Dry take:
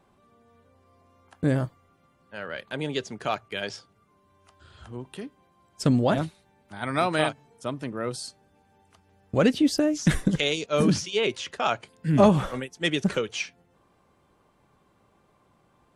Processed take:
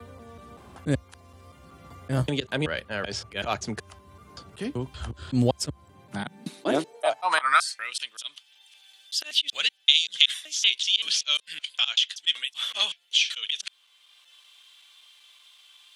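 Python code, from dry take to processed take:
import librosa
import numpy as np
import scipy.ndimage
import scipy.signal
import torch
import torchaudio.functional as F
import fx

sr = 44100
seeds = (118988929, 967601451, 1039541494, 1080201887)

y = fx.block_reorder(x, sr, ms=190.0, group=4)
y = fx.auto_swell(y, sr, attack_ms=102.0)
y = fx.filter_sweep_highpass(y, sr, from_hz=67.0, to_hz=3300.0, start_s=5.73, end_s=8.05, q=5.0)
y = fx.wow_flutter(y, sr, seeds[0], rate_hz=2.1, depth_cents=15.0)
y = fx.band_squash(y, sr, depth_pct=40)
y = y * librosa.db_to_amplitude(4.0)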